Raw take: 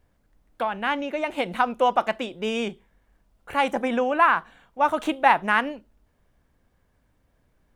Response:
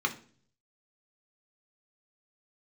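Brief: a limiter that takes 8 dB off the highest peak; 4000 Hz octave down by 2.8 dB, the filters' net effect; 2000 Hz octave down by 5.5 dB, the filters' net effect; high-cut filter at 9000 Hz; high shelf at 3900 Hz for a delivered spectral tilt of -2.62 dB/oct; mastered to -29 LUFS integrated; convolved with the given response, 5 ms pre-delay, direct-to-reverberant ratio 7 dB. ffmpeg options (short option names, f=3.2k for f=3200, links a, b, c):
-filter_complex "[0:a]lowpass=9k,equalizer=f=2k:t=o:g=-8.5,highshelf=f=3.9k:g=6.5,equalizer=f=4k:t=o:g=-3,alimiter=limit=-14.5dB:level=0:latency=1,asplit=2[a][b];[1:a]atrim=start_sample=2205,adelay=5[c];[b][c]afir=irnorm=-1:irlink=0,volume=-15.5dB[d];[a][d]amix=inputs=2:normalize=0,volume=-2dB"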